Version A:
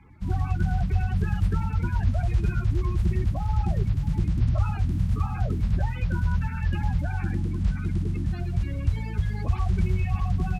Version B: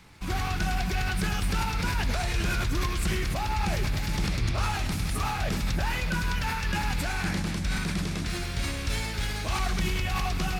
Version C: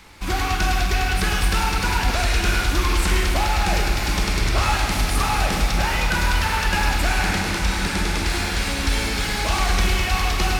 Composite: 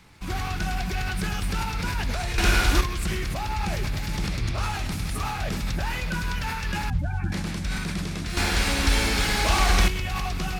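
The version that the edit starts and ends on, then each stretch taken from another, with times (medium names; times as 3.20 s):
B
2.38–2.81 s: from C
6.90–7.32 s: from A
8.37–9.88 s: from C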